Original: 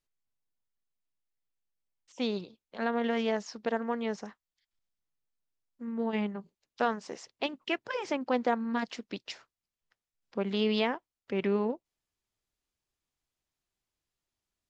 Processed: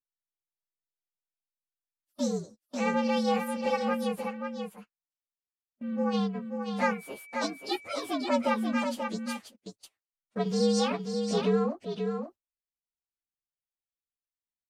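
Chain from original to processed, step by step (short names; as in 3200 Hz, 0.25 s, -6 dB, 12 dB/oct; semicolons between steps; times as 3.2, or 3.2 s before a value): inharmonic rescaling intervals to 119%; on a send: echo 0.535 s -6 dB; on the sum: gate -51 dBFS, range -19 dB; 6.9–8.37 whine 2300 Hz -52 dBFS; gain +4 dB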